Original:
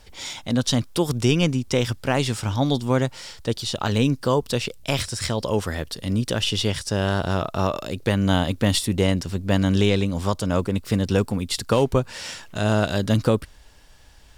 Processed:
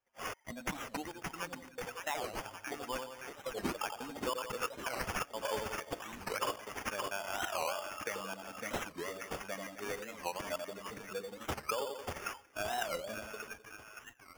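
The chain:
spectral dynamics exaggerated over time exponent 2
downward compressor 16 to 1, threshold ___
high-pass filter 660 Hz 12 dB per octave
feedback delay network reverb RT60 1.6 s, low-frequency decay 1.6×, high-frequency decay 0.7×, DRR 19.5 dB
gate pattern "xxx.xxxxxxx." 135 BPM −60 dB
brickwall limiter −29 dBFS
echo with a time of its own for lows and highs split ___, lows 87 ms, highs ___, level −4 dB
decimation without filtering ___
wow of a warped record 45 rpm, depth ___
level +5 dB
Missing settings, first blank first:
−33 dBFS, 1,100 Hz, 570 ms, 11×, 250 cents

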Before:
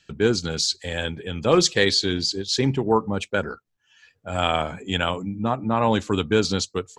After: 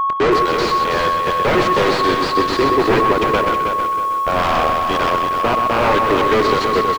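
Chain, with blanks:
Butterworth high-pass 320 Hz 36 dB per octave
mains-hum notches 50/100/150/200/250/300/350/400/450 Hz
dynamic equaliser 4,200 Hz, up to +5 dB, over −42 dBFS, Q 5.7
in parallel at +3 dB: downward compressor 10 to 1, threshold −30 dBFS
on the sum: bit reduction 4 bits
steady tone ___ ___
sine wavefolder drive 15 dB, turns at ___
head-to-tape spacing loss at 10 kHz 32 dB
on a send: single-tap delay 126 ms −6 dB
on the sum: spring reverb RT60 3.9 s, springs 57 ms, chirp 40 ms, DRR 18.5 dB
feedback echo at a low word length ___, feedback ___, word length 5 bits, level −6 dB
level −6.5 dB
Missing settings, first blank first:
1,100 Hz, −23 dBFS, −1.5 dBFS, 321 ms, 35%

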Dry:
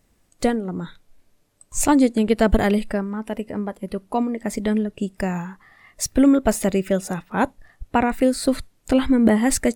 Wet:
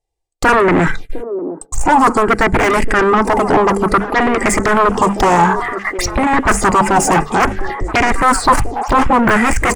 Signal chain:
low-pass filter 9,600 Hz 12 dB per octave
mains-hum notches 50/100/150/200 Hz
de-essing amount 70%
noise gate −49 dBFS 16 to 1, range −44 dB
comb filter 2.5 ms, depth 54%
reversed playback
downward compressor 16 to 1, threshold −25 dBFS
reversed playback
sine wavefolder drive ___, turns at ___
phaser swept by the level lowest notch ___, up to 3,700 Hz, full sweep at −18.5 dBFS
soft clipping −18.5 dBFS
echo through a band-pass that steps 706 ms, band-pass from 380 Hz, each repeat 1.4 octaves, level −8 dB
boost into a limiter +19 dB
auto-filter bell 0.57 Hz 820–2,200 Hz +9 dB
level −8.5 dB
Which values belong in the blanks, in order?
14 dB, −15.5 dBFS, 230 Hz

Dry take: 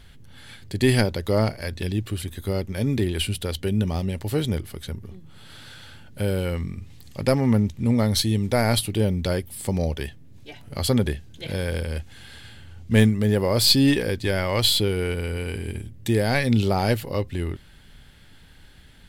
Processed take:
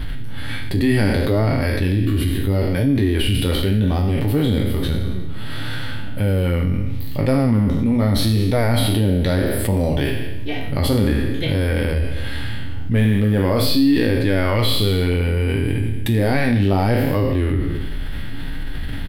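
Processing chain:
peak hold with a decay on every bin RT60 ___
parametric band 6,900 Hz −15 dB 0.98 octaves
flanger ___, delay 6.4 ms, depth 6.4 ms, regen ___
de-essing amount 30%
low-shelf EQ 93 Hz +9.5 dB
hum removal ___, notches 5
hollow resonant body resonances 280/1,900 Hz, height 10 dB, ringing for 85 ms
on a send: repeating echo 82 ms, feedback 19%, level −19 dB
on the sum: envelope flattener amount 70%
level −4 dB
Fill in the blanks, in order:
0.89 s, 0.7 Hz, −40%, 82.89 Hz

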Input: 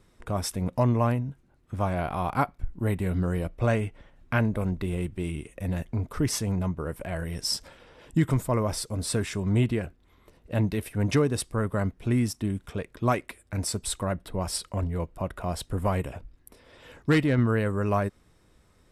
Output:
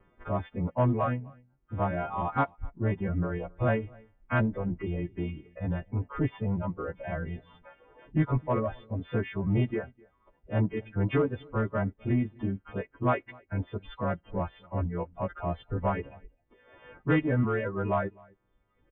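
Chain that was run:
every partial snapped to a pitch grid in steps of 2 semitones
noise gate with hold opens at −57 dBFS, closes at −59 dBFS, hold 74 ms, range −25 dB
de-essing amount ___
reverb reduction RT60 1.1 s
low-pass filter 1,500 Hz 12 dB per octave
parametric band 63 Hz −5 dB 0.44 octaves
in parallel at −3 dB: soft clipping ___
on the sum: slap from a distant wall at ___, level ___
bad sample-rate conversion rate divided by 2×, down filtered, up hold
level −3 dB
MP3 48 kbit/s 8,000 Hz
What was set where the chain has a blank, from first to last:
25%, −24.5 dBFS, 44 metres, −26 dB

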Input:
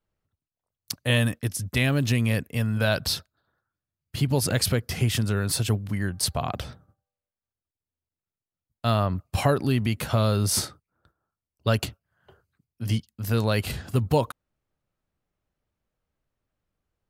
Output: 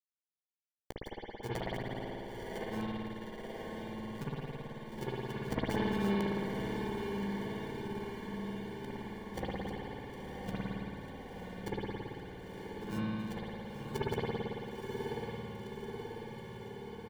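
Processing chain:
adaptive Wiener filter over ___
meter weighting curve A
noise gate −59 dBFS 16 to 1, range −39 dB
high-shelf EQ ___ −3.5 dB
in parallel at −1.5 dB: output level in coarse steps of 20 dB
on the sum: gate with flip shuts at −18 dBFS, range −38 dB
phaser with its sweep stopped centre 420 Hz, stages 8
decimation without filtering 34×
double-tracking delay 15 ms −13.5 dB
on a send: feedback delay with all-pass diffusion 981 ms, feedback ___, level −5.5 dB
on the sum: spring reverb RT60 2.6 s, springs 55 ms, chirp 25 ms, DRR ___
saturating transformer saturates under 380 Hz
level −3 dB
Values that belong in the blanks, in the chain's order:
41 samples, 11,000 Hz, 70%, −9.5 dB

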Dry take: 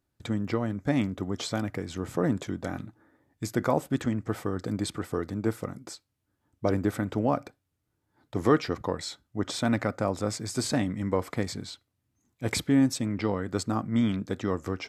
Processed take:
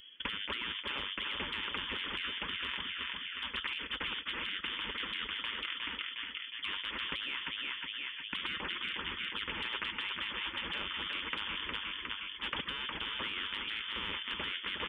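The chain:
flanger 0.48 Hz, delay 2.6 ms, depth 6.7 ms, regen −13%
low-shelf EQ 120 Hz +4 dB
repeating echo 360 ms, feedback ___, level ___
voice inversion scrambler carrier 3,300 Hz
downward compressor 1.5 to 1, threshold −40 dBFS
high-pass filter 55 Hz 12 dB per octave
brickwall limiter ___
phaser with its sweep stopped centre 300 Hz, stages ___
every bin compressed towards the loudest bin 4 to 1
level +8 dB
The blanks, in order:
41%, −11 dB, −29 dBFS, 4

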